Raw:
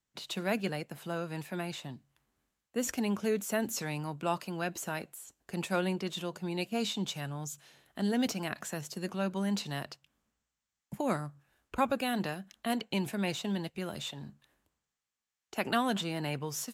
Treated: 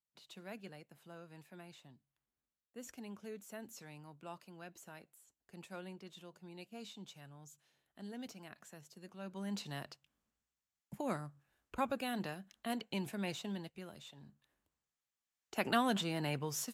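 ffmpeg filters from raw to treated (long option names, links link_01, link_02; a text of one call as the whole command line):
ffmpeg -i in.wav -af "volume=6dB,afade=type=in:start_time=9.15:duration=0.52:silence=0.316228,afade=type=out:start_time=13.36:duration=0.68:silence=0.375837,afade=type=in:start_time=14.04:duration=1.6:silence=0.223872" out.wav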